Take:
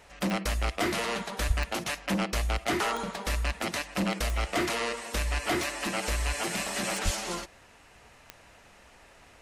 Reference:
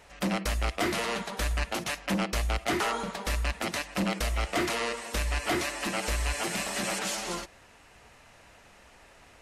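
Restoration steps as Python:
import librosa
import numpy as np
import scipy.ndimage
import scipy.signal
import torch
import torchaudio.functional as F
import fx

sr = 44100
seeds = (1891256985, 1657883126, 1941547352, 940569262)

y = fx.fix_declick_ar(x, sr, threshold=10.0)
y = fx.fix_deplosive(y, sr, at_s=(1.47, 7.04))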